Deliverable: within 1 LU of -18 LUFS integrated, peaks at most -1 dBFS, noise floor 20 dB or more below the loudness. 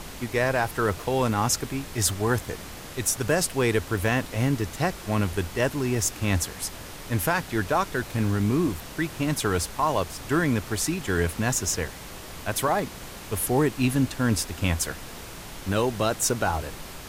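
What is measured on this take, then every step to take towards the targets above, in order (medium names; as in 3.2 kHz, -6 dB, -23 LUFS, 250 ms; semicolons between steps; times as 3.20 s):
noise floor -40 dBFS; noise floor target -46 dBFS; loudness -26.0 LUFS; peak level -9.5 dBFS; loudness target -18.0 LUFS
-> noise print and reduce 6 dB; trim +8 dB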